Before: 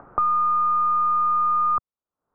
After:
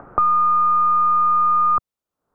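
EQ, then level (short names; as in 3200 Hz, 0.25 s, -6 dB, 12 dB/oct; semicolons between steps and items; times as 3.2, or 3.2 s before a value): bell 1000 Hz -3 dB 0.77 oct; +6.0 dB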